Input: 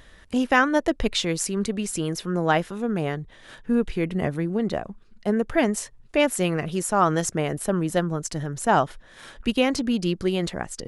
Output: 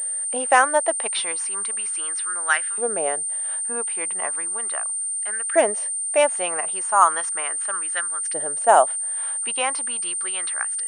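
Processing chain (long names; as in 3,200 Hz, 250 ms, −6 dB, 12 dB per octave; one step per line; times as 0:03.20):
auto-filter high-pass saw up 0.36 Hz 530–1,700 Hz
switching amplifier with a slow clock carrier 8,900 Hz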